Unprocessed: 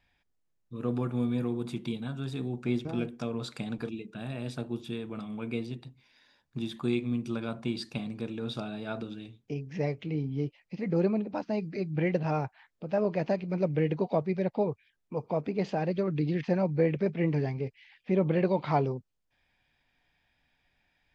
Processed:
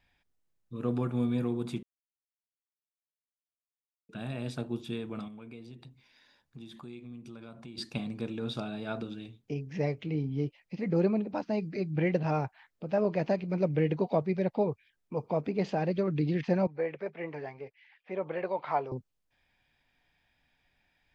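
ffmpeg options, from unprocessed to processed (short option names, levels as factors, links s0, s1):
-filter_complex "[0:a]asettb=1/sr,asplit=3[s0][s1][s2];[s0]atrim=end=5.284[s3];[s1]atrim=start=5.28:end=7.78,asetpts=PTS-STARTPTS,afade=t=in:d=0.004:c=qsin,afade=t=out:st=2.496:d=0.004:c=qsin,acompressor=threshold=0.00447:ratio=3:attack=3.2:release=140:knee=1:detection=peak[s4];[s2]atrim=start=7.776[s5];[s3][s4]acrossfade=d=0.004:c1=hsin:c2=qsin[s6];[s6][s5]acrossfade=d=0.004:c1=qsin:c2=hsin,asettb=1/sr,asplit=3[s7][s8][s9];[s7]atrim=end=16.674[s10];[s8]atrim=start=16.67:end=18.92,asetpts=PTS-STARTPTS,afade=t=in:d=0.004:c=qsin,afade=t=out:st=2.246:d=0.004:c=qsin,acrossover=split=490 2300:gain=0.112 1 0.251[s11][s12][s13];[s11][s12][s13]amix=inputs=3:normalize=0[s14];[s9]atrim=start=18.916[s15];[s10][s14]acrossfade=d=0.004:c1=hsin:c2=qsin[s16];[s16][s15]acrossfade=d=0.004:c1=qsin:c2=hsin,asplit=3[s17][s18][s19];[s17]atrim=end=1.83,asetpts=PTS-STARTPTS,afade=t=out:st=1.826:d=0.004:c=hsin[s20];[s18]atrim=start=1.83:end=4.09,asetpts=PTS-STARTPTS,volume=0[s21];[s19]atrim=start=4.09,asetpts=PTS-STARTPTS,afade=t=in:d=0.004:c=hsin[s22];[s20][s21][s22]concat=n=3:v=0:a=1"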